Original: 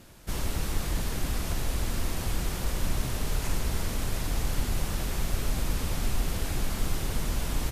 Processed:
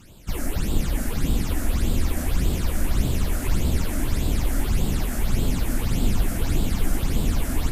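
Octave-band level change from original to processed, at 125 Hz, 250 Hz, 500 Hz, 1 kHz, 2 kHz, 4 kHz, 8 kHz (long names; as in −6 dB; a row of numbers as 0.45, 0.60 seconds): +7.0, +9.0, +5.0, +2.0, +3.0, +1.5, +2.0 decibels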